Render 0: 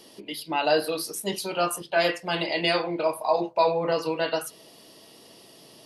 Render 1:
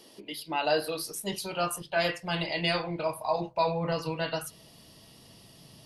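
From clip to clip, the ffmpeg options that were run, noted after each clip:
-af "asubboost=boost=10.5:cutoff=120,volume=-3.5dB"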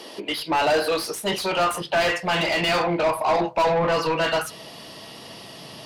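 -filter_complex "[0:a]asplit=2[a][b];[b]highpass=f=720:p=1,volume=26dB,asoftclip=type=tanh:threshold=-13dB[c];[a][c]amix=inputs=2:normalize=0,lowpass=f=2k:p=1,volume=-6dB,volume=1dB"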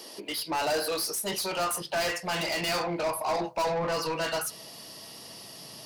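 -af "aexciter=amount=2.3:drive=7.3:freq=4.6k,volume=-8dB"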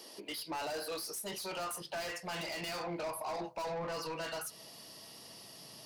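-af "alimiter=level_in=2dB:limit=-24dB:level=0:latency=1:release=134,volume=-2dB,volume=-7dB"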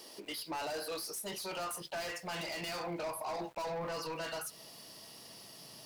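-af "aeval=exprs='val(0)*gte(abs(val(0)),0.00141)':c=same"

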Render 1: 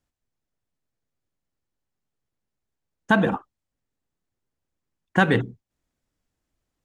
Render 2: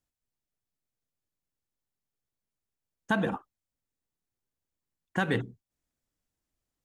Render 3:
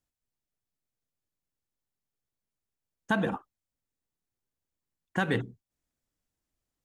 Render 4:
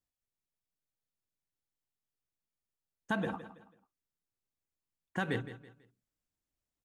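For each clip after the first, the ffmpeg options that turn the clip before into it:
-af "highshelf=f=5.6k:g=7,alimiter=limit=-7.5dB:level=0:latency=1:release=103,volume=-7.5dB"
-af anull
-af "aecho=1:1:164|328|492:0.211|0.0697|0.023,volume=-6dB"

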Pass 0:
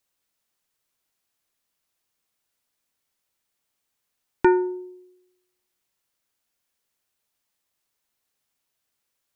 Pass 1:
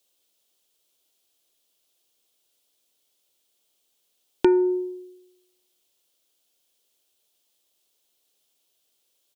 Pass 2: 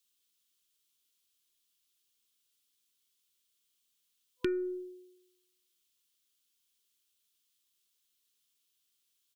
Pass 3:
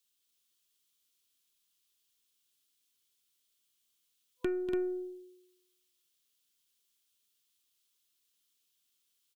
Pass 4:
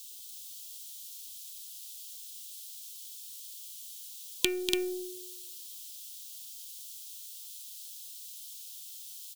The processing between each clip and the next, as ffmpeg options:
-af "acompressor=threshold=-24dB:ratio=3,firequalizer=gain_entry='entry(140,0);entry(360,12);entry(580,11);entry(940,3);entry(1900,0);entry(3200,15);entry(4600,11)':delay=0.05:min_phase=1,volume=-3.5dB"
-af "aeval=exprs='0.531*(cos(1*acos(clip(val(0)/0.531,-1,1)))-cos(1*PI/2))+0.0119*(cos(4*acos(clip(val(0)/0.531,-1,1)))-cos(4*PI/2))':c=same,equalizer=f=460:t=o:w=1.5:g=-9.5,afftfilt=real='re*(1-between(b*sr/4096,500,1000))':imag='im*(1-between(b*sr/4096,500,1000))':win_size=4096:overlap=0.75,volume=-6dB"
-af "aecho=1:1:242|288.6:0.316|0.562,aeval=exprs='(tanh(10*val(0)+0.35)-tanh(0.35))/10':c=same"
-af "aexciter=amount=14.6:drive=8.9:freq=2.5k"

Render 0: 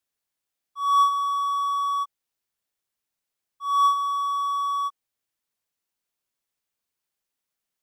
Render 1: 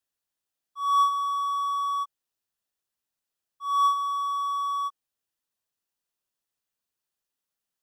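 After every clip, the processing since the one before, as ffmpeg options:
-af "bandreject=f=2.2k:w=8.6,volume=-2.5dB"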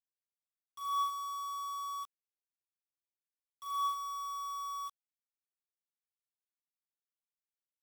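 -af "highpass=1.2k,acrusher=bits=6:mix=0:aa=0.000001,volume=-8dB"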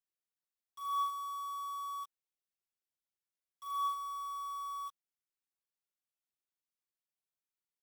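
-af "aecho=1:1:5.4:0.39,volume=-3.5dB"

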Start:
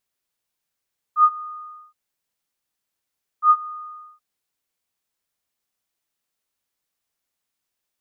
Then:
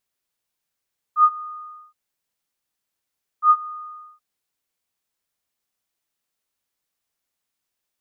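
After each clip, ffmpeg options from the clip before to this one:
-af anull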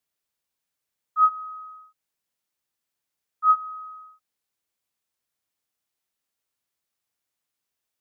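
-af "afreqshift=33,volume=-2.5dB"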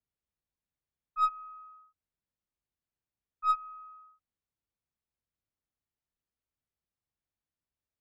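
-af "aemphasis=mode=reproduction:type=riaa,aeval=exprs='0.282*(cos(1*acos(clip(val(0)/0.282,-1,1)))-cos(1*PI/2))+0.0178*(cos(3*acos(clip(val(0)/0.282,-1,1)))-cos(3*PI/2))+0.00708*(cos(4*acos(clip(val(0)/0.282,-1,1)))-cos(4*PI/2))+0.00355*(cos(8*acos(clip(val(0)/0.282,-1,1)))-cos(8*PI/2))':c=same,volume=-7.5dB"

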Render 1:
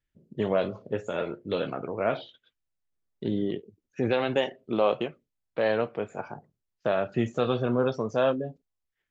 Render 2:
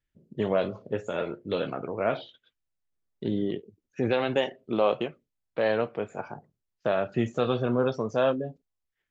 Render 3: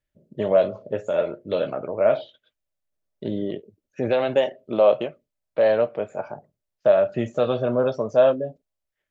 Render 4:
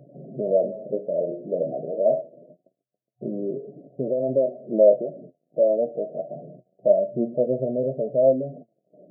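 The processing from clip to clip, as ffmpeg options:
-af anull
-af "equalizer=f=610:w=3.8:g=13.5,bandreject=f=690:w=17"
-af "aeval=exprs='val(0)+0.5*0.0237*sgn(val(0))':c=same,afftfilt=real='re*between(b*sr/4096,120,730)':imag='im*between(b*sr/4096,120,730)':win_size=4096:overlap=0.75,flanger=delay=7:depth=5.6:regen=48:speed=0.25:shape=sinusoidal,volume=2dB"

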